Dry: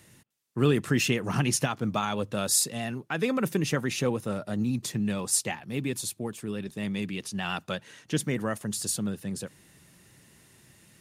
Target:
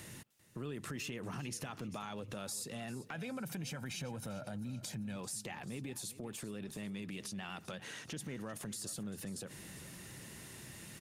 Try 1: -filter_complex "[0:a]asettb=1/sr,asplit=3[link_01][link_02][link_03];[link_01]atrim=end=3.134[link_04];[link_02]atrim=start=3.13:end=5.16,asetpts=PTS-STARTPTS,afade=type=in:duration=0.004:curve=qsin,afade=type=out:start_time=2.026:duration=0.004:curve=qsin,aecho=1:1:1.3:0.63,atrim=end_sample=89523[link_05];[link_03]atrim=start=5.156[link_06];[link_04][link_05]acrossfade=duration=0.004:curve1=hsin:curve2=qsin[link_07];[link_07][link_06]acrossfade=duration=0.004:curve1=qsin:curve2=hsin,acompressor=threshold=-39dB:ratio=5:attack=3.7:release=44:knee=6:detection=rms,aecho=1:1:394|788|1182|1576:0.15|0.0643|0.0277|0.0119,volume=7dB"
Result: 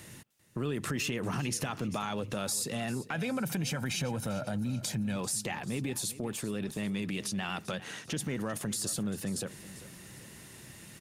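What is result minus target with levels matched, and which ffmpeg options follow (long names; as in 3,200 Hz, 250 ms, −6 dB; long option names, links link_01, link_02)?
downward compressor: peak gain reduction −9 dB
-filter_complex "[0:a]asettb=1/sr,asplit=3[link_01][link_02][link_03];[link_01]atrim=end=3.134[link_04];[link_02]atrim=start=3.13:end=5.16,asetpts=PTS-STARTPTS,afade=type=in:duration=0.004:curve=qsin,afade=type=out:start_time=2.026:duration=0.004:curve=qsin,aecho=1:1:1.3:0.63,atrim=end_sample=89523[link_05];[link_03]atrim=start=5.156[link_06];[link_04][link_05]acrossfade=duration=0.004:curve1=hsin:curve2=qsin[link_07];[link_07][link_06]acrossfade=duration=0.004:curve1=qsin:curve2=hsin,acompressor=threshold=-50.5dB:ratio=5:attack=3.7:release=44:knee=6:detection=rms,aecho=1:1:394|788|1182|1576:0.15|0.0643|0.0277|0.0119,volume=7dB"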